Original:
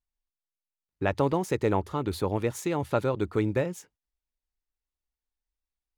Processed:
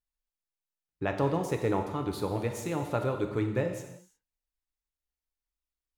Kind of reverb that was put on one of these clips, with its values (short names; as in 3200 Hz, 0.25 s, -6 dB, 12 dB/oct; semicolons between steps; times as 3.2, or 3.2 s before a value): non-linear reverb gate 0.38 s falling, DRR 4 dB; gain -4.5 dB